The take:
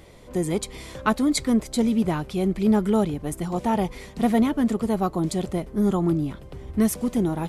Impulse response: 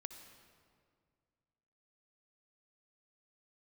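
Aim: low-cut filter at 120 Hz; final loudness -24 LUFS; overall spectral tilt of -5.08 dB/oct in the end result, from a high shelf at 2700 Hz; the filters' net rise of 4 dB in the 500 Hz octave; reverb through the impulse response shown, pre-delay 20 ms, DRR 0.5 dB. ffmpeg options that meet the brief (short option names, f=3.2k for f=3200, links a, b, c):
-filter_complex "[0:a]highpass=120,equalizer=f=500:t=o:g=5,highshelf=f=2.7k:g=6.5,asplit=2[a][b];[1:a]atrim=start_sample=2205,adelay=20[c];[b][c]afir=irnorm=-1:irlink=0,volume=3.5dB[d];[a][d]amix=inputs=2:normalize=0,volume=-4dB"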